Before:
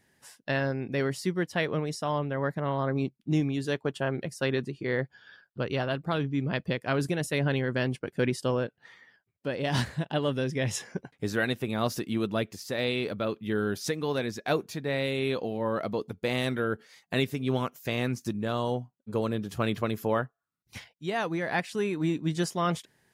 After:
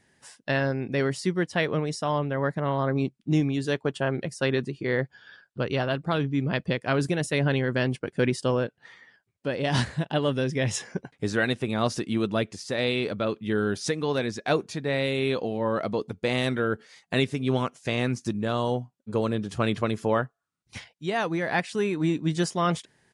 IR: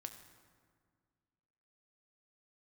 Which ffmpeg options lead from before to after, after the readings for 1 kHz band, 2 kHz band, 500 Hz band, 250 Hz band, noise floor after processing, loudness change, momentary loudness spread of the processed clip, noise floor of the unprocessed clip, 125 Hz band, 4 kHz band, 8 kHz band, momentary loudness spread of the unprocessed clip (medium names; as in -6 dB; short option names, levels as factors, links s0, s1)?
+3.0 dB, +3.0 dB, +3.0 dB, +3.0 dB, -73 dBFS, +3.0 dB, 4 LU, -75 dBFS, +3.0 dB, +3.0 dB, +2.5 dB, 4 LU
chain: -af "aresample=22050,aresample=44100,volume=1.41"